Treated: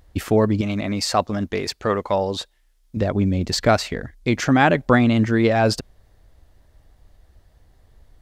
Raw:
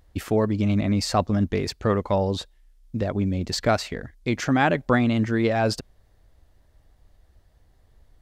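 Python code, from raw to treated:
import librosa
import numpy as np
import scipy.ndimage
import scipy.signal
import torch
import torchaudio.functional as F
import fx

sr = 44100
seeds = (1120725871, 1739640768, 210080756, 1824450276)

y = fx.low_shelf(x, sr, hz=260.0, db=-11.5, at=(0.61, 2.97))
y = y * 10.0 ** (4.5 / 20.0)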